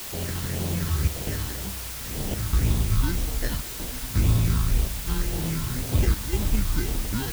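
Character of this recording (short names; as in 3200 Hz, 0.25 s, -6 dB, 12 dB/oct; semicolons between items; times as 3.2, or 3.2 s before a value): aliases and images of a low sample rate 1200 Hz, jitter 0%; chopped level 0.79 Hz, depth 65%, duty 85%; phasing stages 6, 1.9 Hz, lowest notch 570–1900 Hz; a quantiser's noise floor 6-bit, dither triangular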